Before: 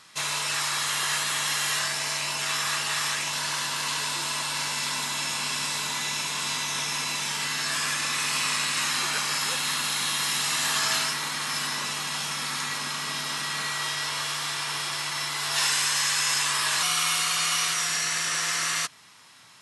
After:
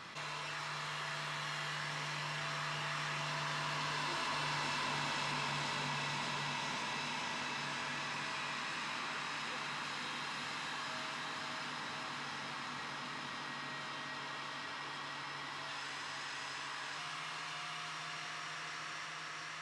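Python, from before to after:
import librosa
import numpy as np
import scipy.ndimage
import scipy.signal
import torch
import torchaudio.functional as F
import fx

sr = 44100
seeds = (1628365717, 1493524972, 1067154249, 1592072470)

p1 = fx.doppler_pass(x, sr, speed_mps=7, closest_m=3.8, pass_at_s=4.53)
p2 = np.clip(p1, -10.0 ** (-29.5 / 20.0), 10.0 ** (-29.5 / 20.0))
p3 = p1 + (p2 * 10.0 ** (-2.0 / 20.0))
p4 = fx.spacing_loss(p3, sr, db_at_10k=24)
p5 = fx.echo_diffused(p4, sr, ms=543, feedback_pct=62, wet_db=-3)
p6 = fx.env_flatten(p5, sr, amount_pct=70)
y = p6 * 10.0 ** (-7.5 / 20.0)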